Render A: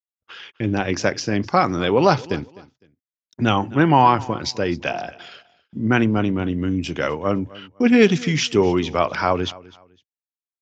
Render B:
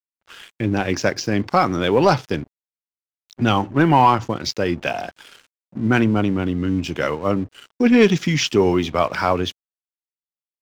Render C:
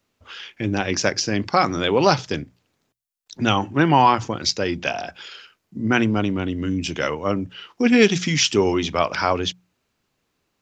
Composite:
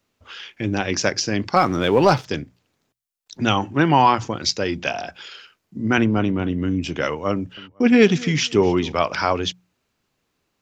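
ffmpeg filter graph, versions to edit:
-filter_complex "[0:a]asplit=2[a][b];[2:a]asplit=4[c][d][e][f];[c]atrim=end=1.562[g];[1:a]atrim=start=1.558:end=2.252[h];[d]atrim=start=2.248:end=5.982[i];[a]atrim=start=5.978:end=7.042[j];[e]atrim=start=7.038:end=7.572[k];[b]atrim=start=7.568:end=8.922[l];[f]atrim=start=8.918[m];[g][h]acrossfade=d=0.004:c1=hsin:c2=hsin[n];[n][i]acrossfade=d=0.004:c1=hsin:c2=hsin[o];[o][j]acrossfade=d=0.004:c1=hsin:c2=hsin[p];[p][k]acrossfade=d=0.004:c1=hsin:c2=hsin[q];[q][l]acrossfade=d=0.004:c1=hsin:c2=hsin[r];[r][m]acrossfade=d=0.004:c1=hsin:c2=hsin"

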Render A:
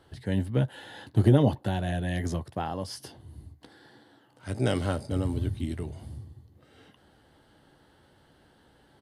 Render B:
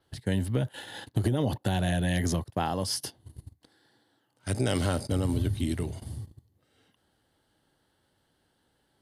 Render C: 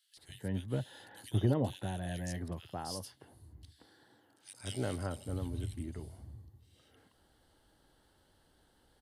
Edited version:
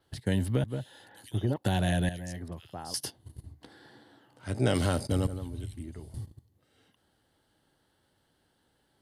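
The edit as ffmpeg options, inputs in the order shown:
-filter_complex "[2:a]asplit=3[a][b][c];[1:a]asplit=5[d][e][f][g][h];[d]atrim=end=0.642[i];[a]atrim=start=0.638:end=1.562[j];[e]atrim=start=1.558:end=2.092[k];[b]atrim=start=2.088:end=2.942[l];[f]atrim=start=2.938:end=3.442[m];[0:a]atrim=start=3.438:end=4.742[n];[g]atrim=start=4.738:end=5.272[o];[c]atrim=start=5.268:end=6.142[p];[h]atrim=start=6.138[q];[i][j]acrossfade=d=0.004:c1=hsin:c2=hsin[r];[r][k]acrossfade=d=0.004:c1=hsin:c2=hsin[s];[s][l]acrossfade=d=0.004:c1=hsin:c2=hsin[t];[t][m]acrossfade=d=0.004:c1=hsin:c2=hsin[u];[u][n]acrossfade=d=0.004:c1=hsin:c2=hsin[v];[v][o]acrossfade=d=0.004:c1=hsin:c2=hsin[w];[w][p]acrossfade=d=0.004:c1=hsin:c2=hsin[x];[x][q]acrossfade=d=0.004:c1=hsin:c2=hsin"

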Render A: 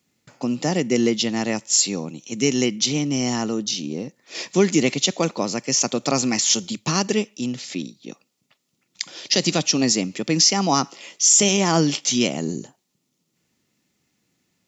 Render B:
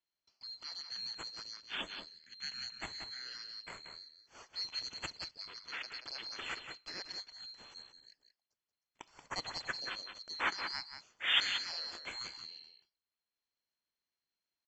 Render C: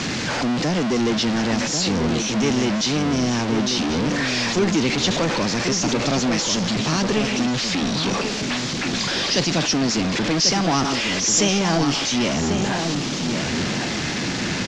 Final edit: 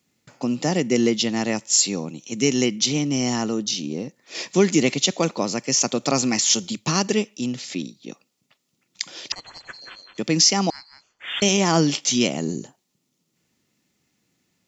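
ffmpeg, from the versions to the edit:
-filter_complex "[1:a]asplit=2[a][b];[0:a]asplit=3[c][d][e];[c]atrim=end=9.322[f];[a]atrim=start=9.318:end=10.182[g];[d]atrim=start=10.178:end=10.702[h];[b]atrim=start=10.698:end=11.422[i];[e]atrim=start=11.418[j];[f][g]acrossfade=d=0.004:c1=hsin:c2=hsin[k];[k][h]acrossfade=d=0.004:c1=hsin:c2=hsin[l];[l][i]acrossfade=d=0.004:c1=hsin:c2=hsin[m];[m][j]acrossfade=d=0.004:c1=hsin:c2=hsin"

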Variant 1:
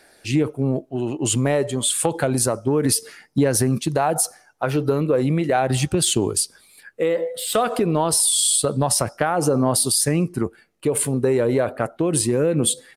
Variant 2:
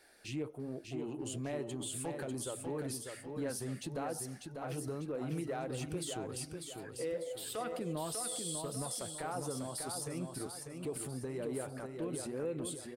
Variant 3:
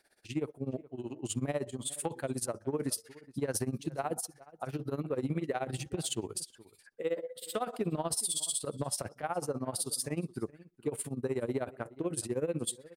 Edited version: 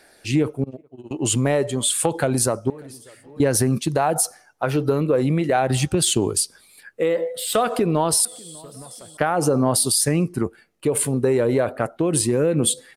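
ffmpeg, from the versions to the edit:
-filter_complex "[1:a]asplit=2[a][b];[0:a]asplit=4[c][d][e][f];[c]atrim=end=0.642[g];[2:a]atrim=start=0.638:end=1.112[h];[d]atrim=start=1.108:end=2.702[i];[a]atrim=start=2.698:end=3.402[j];[e]atrim=start=3.398:end=8.252[k];[b]atrim=start=8.248:end=9.172[l];[f]atrim=start=9.168[m];[g][h]acrossfade=d=0.004:c1=hsin:c2=hsin[n];[n][i]acrossfade=d=0.004:c1=hsin:c2=hsin[o];[o][j]acrossfade=d=0.004:c1=hsin:c2=hsin[p];[p][k]acrossfade=d=0.004:c1=hsin:c2=hsin[q];[q][l]acrossfade=d=0.004:c1=hsin:c2=hsin[r];[r][m]acrossfade=d=0.004:c1=hsin:c2=hsin"

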